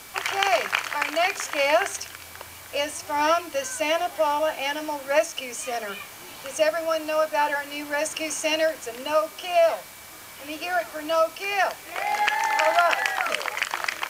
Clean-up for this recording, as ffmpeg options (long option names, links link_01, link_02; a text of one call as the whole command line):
ffmpeg -i in.wav -af "adeclick=threshold=4,bandreject=frequency=2300:width=30,afwtdn=0.0063" out.wav